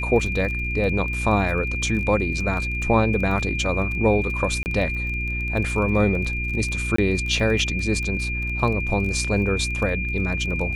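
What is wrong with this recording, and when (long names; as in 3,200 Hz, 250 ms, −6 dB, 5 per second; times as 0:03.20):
surface crackle 20 per second −29 dBFS
mains hum 60 Hz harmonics 6 −28 dBFS
whistle 2,400 Hz −27 dBFS
0:04.63–0:04.66: drop-out 29 ms
0:06.96–0:06.98: drop-out 24 ms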